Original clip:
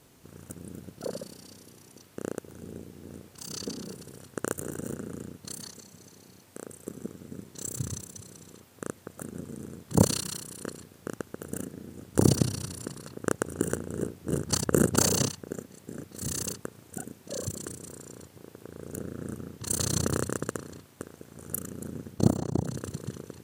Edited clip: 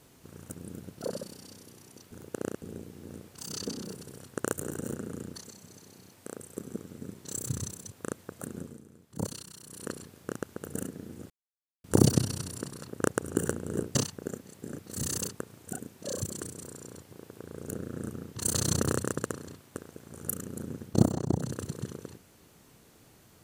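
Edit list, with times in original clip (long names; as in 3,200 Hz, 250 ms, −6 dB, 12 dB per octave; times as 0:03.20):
0:02.11–0:02.62: reverse
0:05.35–0:05.65: remove
0:08.22–0:08.70: remove
0:09.35–0:10.63: duck −13 dB, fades 0.26 s
0:12.08: splice in silence 0.54 s
0:14.19–0:15.20: remove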